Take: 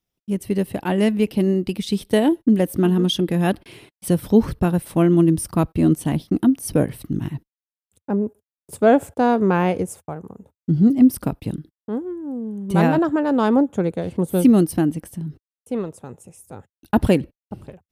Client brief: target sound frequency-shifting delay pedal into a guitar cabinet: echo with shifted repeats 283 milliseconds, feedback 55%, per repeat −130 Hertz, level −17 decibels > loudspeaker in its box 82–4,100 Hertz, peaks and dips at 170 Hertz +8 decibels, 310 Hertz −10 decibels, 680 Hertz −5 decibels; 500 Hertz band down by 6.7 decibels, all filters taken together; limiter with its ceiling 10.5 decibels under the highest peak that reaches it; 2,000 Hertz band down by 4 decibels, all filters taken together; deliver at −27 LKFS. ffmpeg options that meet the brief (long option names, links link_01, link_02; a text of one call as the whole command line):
ffmpeg -i in.wav -filter_complex "[0:a]equalizer=frequency=500:width_type=o:gain=-5,equalizer=frequency=2000:width_type=o:gain=-5,alimiter=limit=-15dB:level=0:latency=1,asplit=6[link_01][link_02][link_03][link_04][link_05][link_06];[link_02]adelay=283,afreqshift=-130,volume=-17dB[link_07];[link_03]adelay=566,afreqshift=-260,volume=-22.2dB[link_08];[link_04]adelay=849,afreqshift=-390,volume=-27.4dB[link_09];[link_05]adelay=1132,afreqshift=-520,volume=-32.6dB[link_10];[link_06]adelay=1415,afreqshift=-650,volume=-37.8dB[link_11];[link_01][link_07][link_08][link_09][link_10][link_11]amix=inputs=6:normalize=0,highpass=82,equalizer=frequency=170:width_type=q:width=4:gain=8,equalizer=frequency=310:width_type=q:width=4:gain=-10,equalizer=frequency=680:width_type=q:width=4:gain=-5,lowpass=frequency=4100:width=0.5412,lowpass=frequency=4100:width=1.3066,volume=-3.5dB" out.wav